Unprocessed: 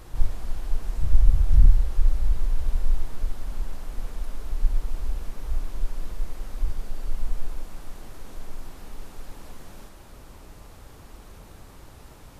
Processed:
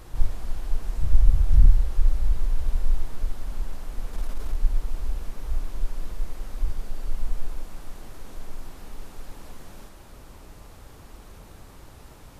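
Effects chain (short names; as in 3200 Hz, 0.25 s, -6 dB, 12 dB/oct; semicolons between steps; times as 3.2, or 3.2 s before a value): 4.13–4.56 sample leveller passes 1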